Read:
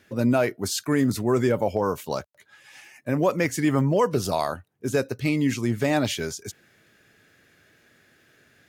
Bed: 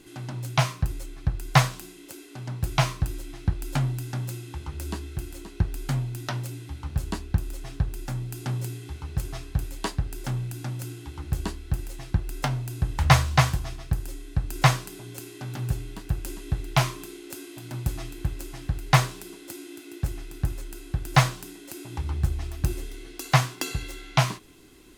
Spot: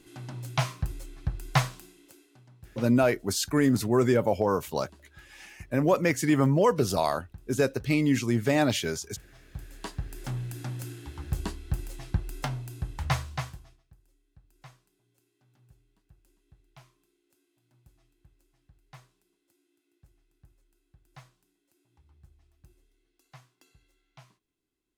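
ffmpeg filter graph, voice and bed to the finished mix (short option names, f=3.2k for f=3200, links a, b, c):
-filter_complex "[0:a]adelay=2650,volume=-1dB[a];[1:a]volume=14.5dB,afade=t=out:st=1.48:d=1:silence=0.133352,afade=t=in:st=9.32:d=1.21:silence=0.105925,afade=t=out:st=12.02:d=1.81:silence=0.0334965[b];[a][b]amix=inputs=2:normalize=0"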